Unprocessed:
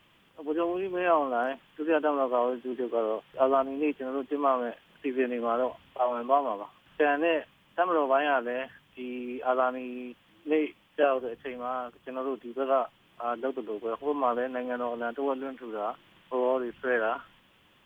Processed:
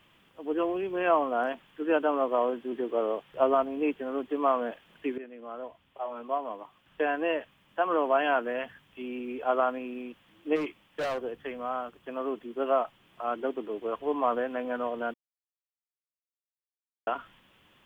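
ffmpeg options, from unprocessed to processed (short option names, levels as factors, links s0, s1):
-filter_complex "[0:a]asplit=3[s0][s1][s2];[s0]afade=t=out:st=10.55:d=0.02[s3];[s1]asoftclip=type=hard:threshold=0.0398,afade=t=in:st=10.55:d=0.02,afade=t=out:st=11.22:d=0.02[s4];[s2]afade=t=in:st=11.22:d=0.02[s5];[s3][s4][s5]amix=inputs=3:normalize=0,asplit=4[s6][s7][s8][s9];[s6]atrim=end=5.18,asetpts=PTS-STARTPTS,afade=t=out:st=5.176:d=0.004:c=hsin:silence=0.141254[s10];[s7]atrim=start=5.18:end=15.14,asetpts=PTS-STARTPTS,afade=t=in:d=3.06:silence=0.141254,afade=t=out:st=9.956:d=0.004:c=hsin[s11];[s8]atrim=start=15.14:end=17.07,asetpts=PTS-STARTPTS,volume=0[s12];[s9]atrim=start=17.07,asetpts=PTS-STARTPTS,afade=t=in:d=0.004:c=hsin[s13];[s10][s11][s12][s13]concat=n=4:v=0:a=1"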